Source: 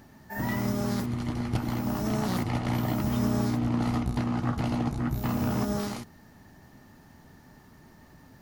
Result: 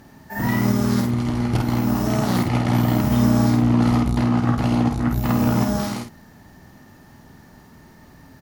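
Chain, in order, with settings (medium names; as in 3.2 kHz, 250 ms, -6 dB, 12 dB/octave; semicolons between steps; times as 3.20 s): doubling 50 ms -4 dB; Chebyshev shaper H 7 -32 dB, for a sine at -12 dBFS; trim +6.5 dB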